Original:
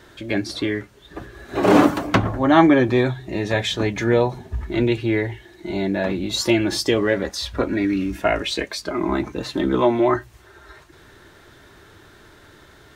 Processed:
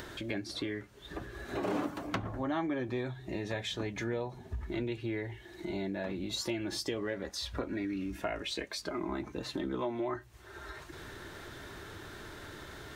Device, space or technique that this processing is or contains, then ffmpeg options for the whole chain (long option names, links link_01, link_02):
upward and downward compression: -af "acompressor=mode=upward:threshold=-33dB:ratio=2.5,acompressor=threshold=-31dB:ratio=3,volume=-5dB"